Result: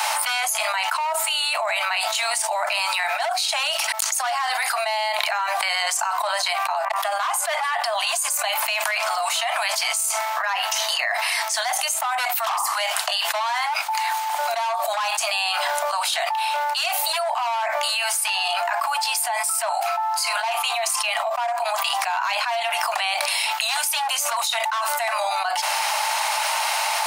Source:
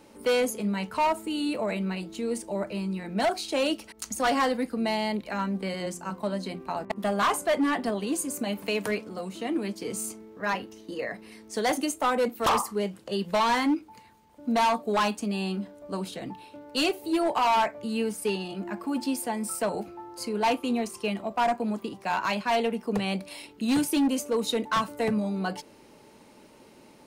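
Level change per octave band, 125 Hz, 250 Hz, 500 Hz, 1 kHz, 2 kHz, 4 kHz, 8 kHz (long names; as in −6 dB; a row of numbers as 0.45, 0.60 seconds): below −40 dB, below −40 dB, 0.0 dB, +7.0 dB, +10.5 dB, +12.5 dB, +13.5 dB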